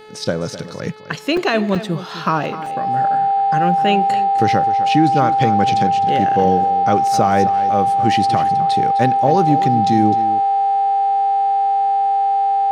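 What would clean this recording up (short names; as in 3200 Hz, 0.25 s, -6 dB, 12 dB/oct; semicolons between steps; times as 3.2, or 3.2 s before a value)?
de-hum 430.1 Hz, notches 11; notch 790 Hz, Q 30; interpolate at 1.37/1.75/2.66, 3.6 ms; inverse comb 0.256 s -13.5 dB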